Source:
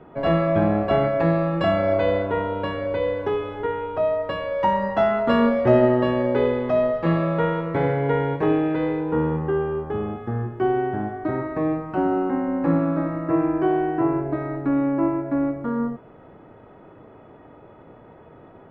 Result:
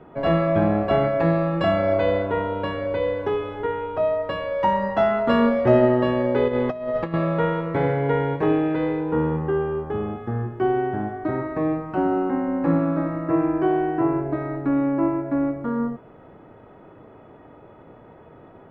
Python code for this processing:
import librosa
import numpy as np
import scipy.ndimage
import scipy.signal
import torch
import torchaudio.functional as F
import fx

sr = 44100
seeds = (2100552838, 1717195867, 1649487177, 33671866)

y = fx.over_compress(x, sr, threshold_db=-24.0, ratio=-0.5, at=(6.48, 7.14))